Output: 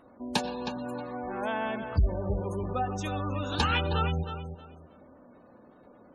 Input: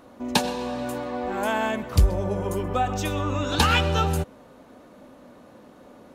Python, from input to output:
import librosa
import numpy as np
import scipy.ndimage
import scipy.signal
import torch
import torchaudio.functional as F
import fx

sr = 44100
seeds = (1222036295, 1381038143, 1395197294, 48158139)

y = fx.echo_feedback(x, sr, ms=316, feedback_pct=22, wet_db=-9)
y = fx.spec_gate(y, sr, threshold_db=-25, keep='strong')
y = y * librosa.db_to_amplitude(-6.5)